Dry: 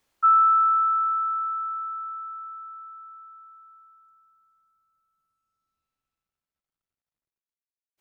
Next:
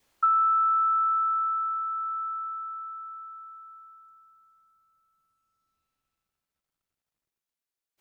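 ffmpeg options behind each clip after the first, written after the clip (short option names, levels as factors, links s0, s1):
-af "adynamicequalizer=threshold=0.0224:dfrequency=1300:dqfactor=5:tfrequency=1300:tqfactor=5:attack=5:release=100:ratio=0.375:range=1.5:mode=cutabove:tftype=bell,acompressor=threshold=0.0501:ratio=4,volume=1.58"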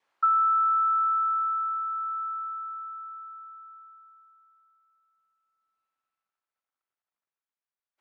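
-af "bandpass=f=1200:t=q:w=0.94:csg=0"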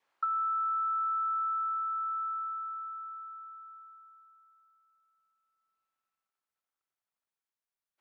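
-af "acompressor=threshold=0.0447:ratio=10,volume=0.794"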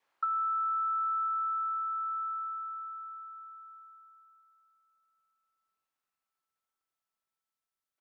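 -filter_complex "[0:a]asplit=2[s0][s1];[s1]adelay=1047,lowpass=f=1200:p=1,volume=0.0944,asplit=2[s2][s3];[s3]adelay=1047,lowpass=f=1200:p=1,volume=0.5,asplit=2[s4][s5];[s5]adelay=1047,lowpass=f=1200:p=1,volume=0.5,asplit=2[s6][s7];[s7]adelay=1047,lowpass=f=1200:p=1,volume=0.5[s8];[s0][s2][s4][s6][s8]amix=inputs=5:normalize=0"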